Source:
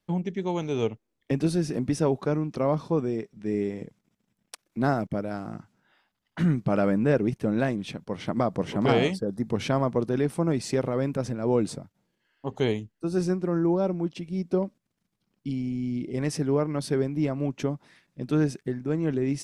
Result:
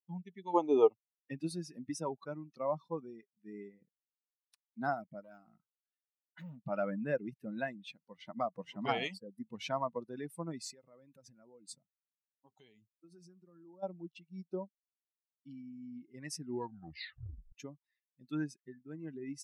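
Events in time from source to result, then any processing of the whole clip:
0:00.54–0:00.92: gain on a spectral selection 250–1,300 Hz +11 dB
0:03.68–0:04.66: high-shelf EQ 4,000 Hz −10 dB
0:05.21–0:06.65: hard clipping −27 dBFS
0:10.60–0:13.83: downward compressor 5 to 1, threshold −31 dBFS
0:16.40: tape stop 1.12 s
whole clip: spectral dynamics exaggerated over time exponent 2; dynamic equaliser 890 Hz, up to +4 dB, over −48 dBFS, Q 2.1; high-pass filter 450 Hz 6 dB per octave; level −3.5 dB

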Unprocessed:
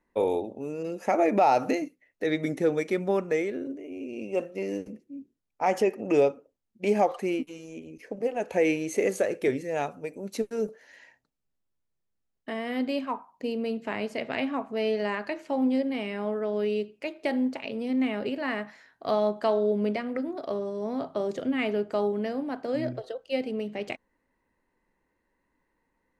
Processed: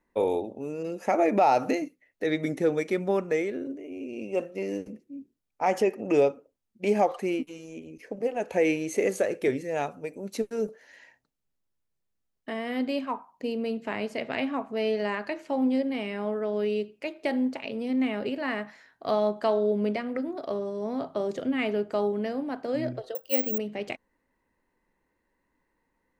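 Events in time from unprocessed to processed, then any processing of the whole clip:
0:23.15–0:23.58: bad sample-rate conversion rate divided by 2×, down filtered, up zero stuff

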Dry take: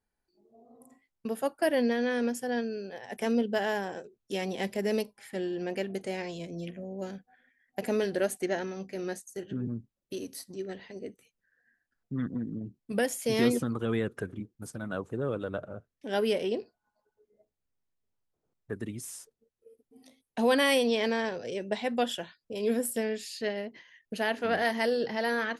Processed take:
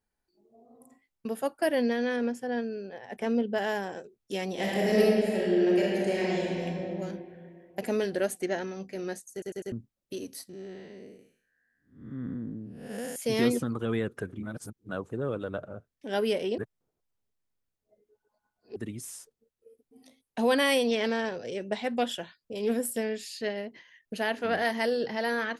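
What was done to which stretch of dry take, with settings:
0:02.16–0:03.58: low-pass filter 2,600 Hz 6 dB per octave
0:04.51–0:06.66: thrown reverb, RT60 2.5 s, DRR −5.5 dB
0:09.32: stutter in place 0.10 s, 4 plays
0:10.49–0:13.16: spectrum smeared in time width 266 ms
0:14.43–0:14.89: reverse
0:16.58–0:18.76: reverse
0:20.91–0:22.73: highs frequency-modulated by the lows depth 0.13 ms

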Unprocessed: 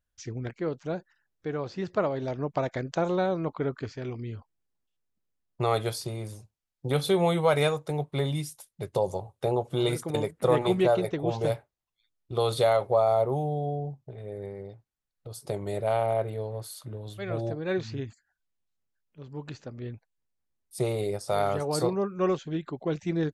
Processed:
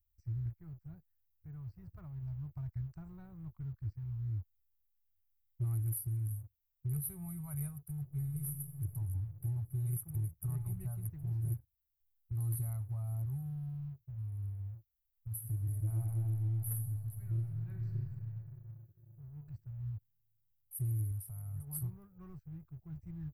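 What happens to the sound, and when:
0:08.01–0:08.91: thrown reverb, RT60 2.6 s, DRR 4 dB
0:15.28–0:18.02: thrown reverb, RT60 3 s, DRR 1 dB
0:21.11–0:21.67: downward compressor 3 to 1, threshold −31 dBFS
whole clip: inverse Chebyshev band-stop filter 220–7,200 Hz, stop band 50 dB; low-shelf EQ 120 Hz −11 dB; leveller curve on the samples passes 1; level +15 dB

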